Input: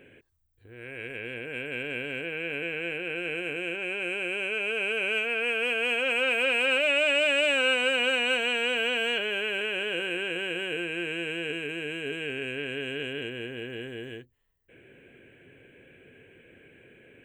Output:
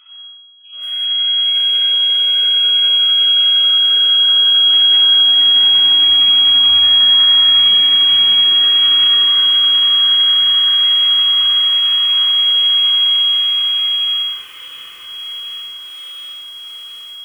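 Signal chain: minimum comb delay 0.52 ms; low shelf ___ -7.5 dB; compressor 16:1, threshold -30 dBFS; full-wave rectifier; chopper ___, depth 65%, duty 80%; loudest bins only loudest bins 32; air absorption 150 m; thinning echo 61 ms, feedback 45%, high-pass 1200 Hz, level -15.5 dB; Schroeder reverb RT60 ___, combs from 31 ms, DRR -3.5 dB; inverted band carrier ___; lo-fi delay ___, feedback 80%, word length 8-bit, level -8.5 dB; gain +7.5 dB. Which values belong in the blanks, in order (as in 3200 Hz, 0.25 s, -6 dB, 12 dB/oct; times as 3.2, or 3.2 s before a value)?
67 Hz, 11 Hz, 1 s, 3300 Hz, 0.718 s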